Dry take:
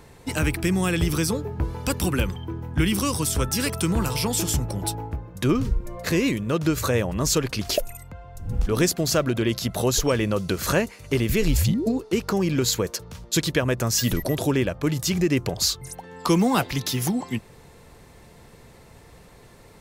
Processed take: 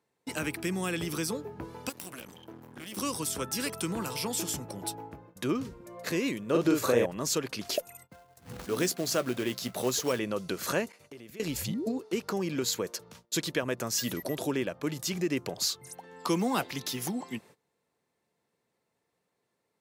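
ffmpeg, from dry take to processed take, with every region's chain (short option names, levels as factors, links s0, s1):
-filter_complex "[0:a]asettb=1/sr,asplit=3[s0][s1][s2];[s0]atrim=end=1.894[s3];[s1]atrim=start=1.89:end=2.97,asetpts=PTS-STARTPTS,afade=t=in:d=0.004:c=qsin,afade=t=out:st=1.076:d=0.004:c=qsin,aemphasis=mode=production:type=cd,acompressor=threshold=0.0447:ratio=4:attack=3.2:release=140:knee=1:detection=peak,aeval=exprs='max(val(0),0)':c=same[s4];[s2]atrim=start=2.966[s5];[s3][s4]acrossfade=d=0.004:c1=hsin:c2=qsin[s6];[s6][s5]acrossfade=d=0.004:c1=qsin:c2=hsin,asettb=1/sr,asplit=3[s7][s8][s9];[s7]atrim=end=6.504[s10];[s8]atrim=start=6.5:end=7.06,asetpts=PTS-STARTPTS,afade=t=in:d=0.004:c=qsin,afade=t=out:st=0.556:d=0.004:c=qsin,equalizer=f=450:w=0.68:g=6,asplit=2[s11][s12];[s12]adelay=42,volume=0.708[s13];[s11][s13]amix=inputs=2:normalize=0,atrim=end_sample=24696[s14];[s9]atrim=start=7.056[s15];[s10][s14]acrossfade=d=0.004:c1=hsin:c2=qsin[s16];[s16][s15]acrossfade=d=0.004:c1=qsin:c2=hsin,asettb=1/sr,asplit=3[s17][s18][s19];[s17]atrim=end=8.094[s20];[s18]atrim=start=8.09:end=10.19,asetpts=PTS-STARTPTS,afade=t=in:d=0.004:c=qsin,afade=t=out:st=2.096:d=0.004:c=qsin,acrusher=bits=4:mode=log:mix=0:aa=0.000001,asplit=2[s21][s22];[s22]adelay=16,volume=0.224[s23];[s21][s23]amix=inputs=2:normalize=0,atrim=end_sample=92610[s24];[s19]atrim=start=10.186[s25];[s20][s24]acrossfade=d=0.004:c1=hsin:c2=qsin[s26];[s26][s25]acrossfade=d=0.004:c1=qsin:c2=hsin,asettb=1/sr,asplit=3[s27][s28][s29];[s27]atrim=end=10.924[s30];[s28]atrim=start=10.92:end=11.4,asetpts=PTS-STARTPTS,afade=t=in:d=0.004:c=qsin,afade=t=out:st=0.476:d=0.004:c=qsin,agate=range=0.0224:threshold=0.00794:ratio=3:release=100:detection=peak,equalizer=f=640:w=1.6:g=3.5,acompressor=threshold=0.0158:ratio=6:attack=3.2:release=140:knee=1:detection=peak[s31];[s29]atrim=start=11.396[s32];[s30][s31]acrossfade=d=0.004:c1=hsin:c2=qsin[s33];[s33][s32]acrossfade=d=0.004:c1=qsin:c2=hsin,highpass=200,agate=range=0.0891:threshold=0.00562:ratio=16:detection=peak,volume=0.447"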